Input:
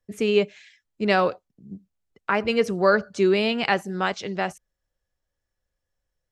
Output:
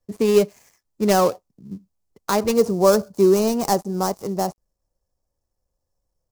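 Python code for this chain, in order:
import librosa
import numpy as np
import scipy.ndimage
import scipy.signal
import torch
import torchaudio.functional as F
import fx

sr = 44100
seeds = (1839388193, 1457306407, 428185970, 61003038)

y = fx.dead_time(x, sr, dead_ms=0.13)
y = fx.band_shelf(y, sr, hz=2300.0, db=fx.steps((0.0, -8.5), (2.52, -15.5)), octaves=1.7)
y = y * librosa.db_to_amplitude(4.5)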